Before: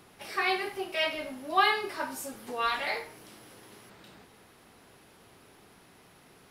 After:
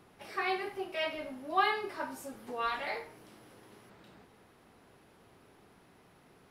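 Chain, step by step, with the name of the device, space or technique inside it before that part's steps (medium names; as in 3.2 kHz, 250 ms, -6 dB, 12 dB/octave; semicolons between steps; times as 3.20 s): behind a face mask (treble shelf 2.3 kHz -8 dB); trim -2.5 dB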